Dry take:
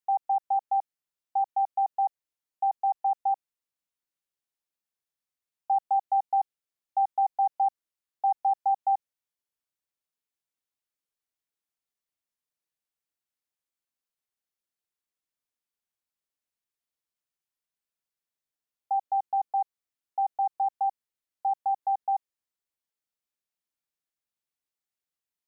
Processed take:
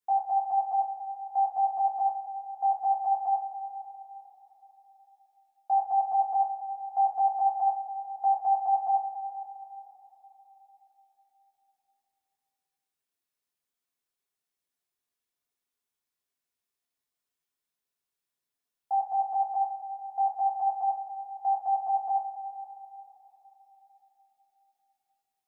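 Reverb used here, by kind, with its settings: two-slope reverb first 0.28 s, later 3.8 s, from -18 dB, DRR -5 dB; gain -3.5 dB

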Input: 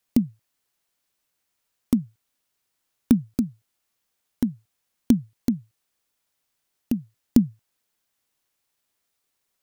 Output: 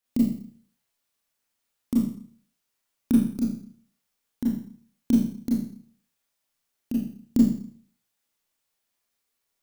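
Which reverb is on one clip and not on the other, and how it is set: Schroeder reverb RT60 0.53 s, combs from 27 ms, DRR -5.5 dB; gain -8.5 dB

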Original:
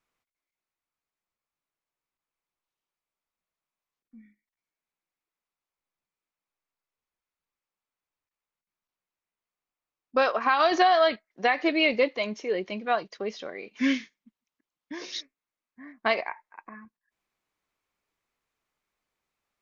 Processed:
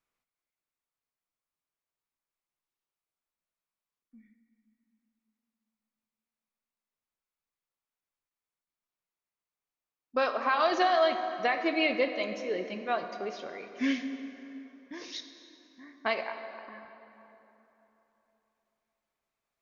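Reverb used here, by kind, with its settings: plate-style reverb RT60 3.4 s, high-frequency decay 0.6×, DRR 7 dB; gain -5 dB

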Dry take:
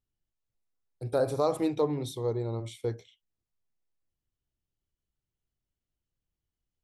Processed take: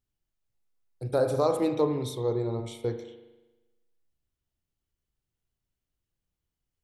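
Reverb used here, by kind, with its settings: spring tank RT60 1.1 s, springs 39 ms, chirp 40 ms, DRR 7.5 dB; gain +1.5 dB

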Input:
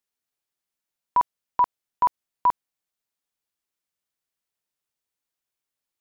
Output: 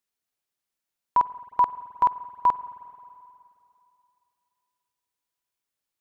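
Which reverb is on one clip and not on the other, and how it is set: spring tank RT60 2.7 s, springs 44/53 ms, chirp 30 ms, DRR 15 dB

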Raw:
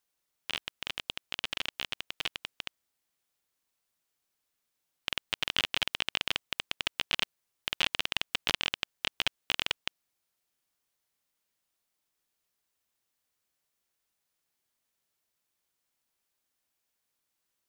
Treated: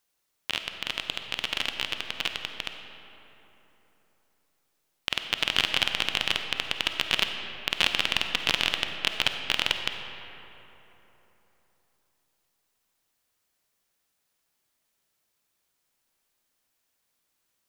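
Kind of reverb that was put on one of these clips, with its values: digital reverb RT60 3.6 s, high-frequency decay 0.5×, pre-delay 10 ms, DRR 5.5 dB; gain +5 dB

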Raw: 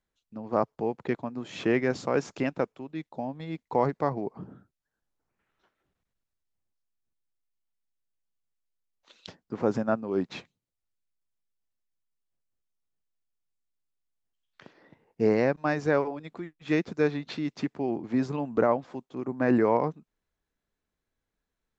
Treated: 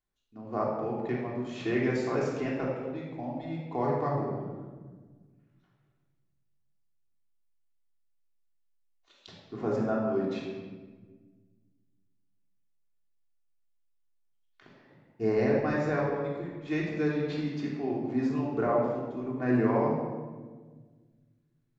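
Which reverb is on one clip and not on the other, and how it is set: shoebox room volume 1300 m³, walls mixed, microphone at 3.3 m; gain -9 dB

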